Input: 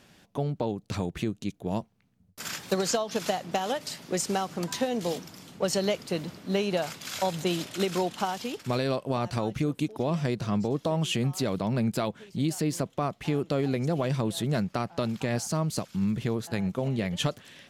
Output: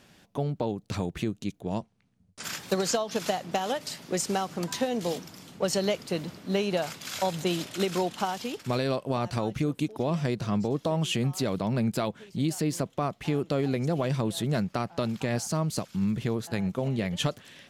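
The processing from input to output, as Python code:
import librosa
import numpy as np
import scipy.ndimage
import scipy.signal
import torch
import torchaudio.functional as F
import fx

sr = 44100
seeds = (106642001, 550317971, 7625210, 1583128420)

y = fx.ellip_lowpass(x, sr, hz=9900.0, order=4, stop_db=40, at=(1.61, 2.44))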